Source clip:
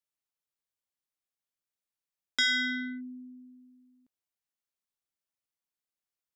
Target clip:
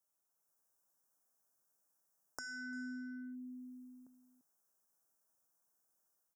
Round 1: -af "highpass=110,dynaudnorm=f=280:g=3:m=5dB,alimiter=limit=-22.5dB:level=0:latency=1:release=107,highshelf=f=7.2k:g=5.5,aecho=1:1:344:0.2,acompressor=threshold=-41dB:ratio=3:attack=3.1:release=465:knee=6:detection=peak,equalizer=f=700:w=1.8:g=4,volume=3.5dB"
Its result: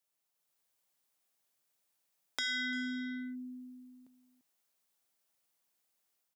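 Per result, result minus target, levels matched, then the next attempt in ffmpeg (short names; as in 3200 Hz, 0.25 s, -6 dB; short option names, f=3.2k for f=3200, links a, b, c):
4000 Hz band +8.5 dB; compressor: peak gain reduction -6 dB
-af "highpass=110,dynaudnorm=f=280:g=3:m=5dB,alimiter=limit=-22.5dB:level=0:latency=1:release=107,highshelf=f=7.2k:g=5.5,aecho=1:1:344:0.2,acompressor=threshold=-41dB:ratio=3:attack=3.1:release=465:knee=6:detection=peak,asuperstop=centerf=3000:order=12:qfactor=0.82,equalizer=f=700:w=1.8:g=4,volume=3.5dB"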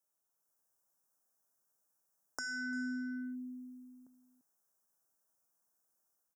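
compressor: peak gain reduction -6 dB
-af "highpass=110,dynaudnorm=f=280:g=3:m=5dB,alimiter=limit=-22.5dB:level=0:latency=1:release=107,highshelf=f=7.2k:g=5.5,aecho=1:1:344:0.2,acompressor=threshold=-50dB:ratio=3:attack=3.1:release=465:knee=6:detection=peak,asuperstop=centerf=3000:order=12:qfactor=0.82,equalizer=f=700:w=1.8:g=4,volume=3.5dB"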